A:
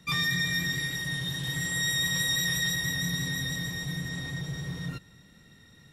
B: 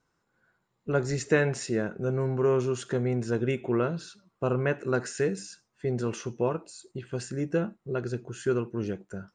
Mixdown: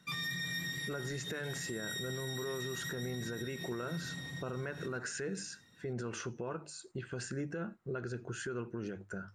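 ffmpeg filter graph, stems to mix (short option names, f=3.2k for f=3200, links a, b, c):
-filter_complex "[0:a]highpass=110,volume=-7.5dB[a];[1:a]equalizer=f=1.5k:t=o:w=0.6:g=7.5,bandreject=f=50:t=h:w=6,bandreject=f=100:t=h:w=6,bandreject=f=150:t=h:w=6,acompressor=threshold=-25dB:ratio=6,volume=-1.5dB[b];[a][b]amix=inputs=2:normalize=0,alimiter=level_in=6.5dB:limit=-24dB:level=0:latency=1:release=100,volume=-6.5dB"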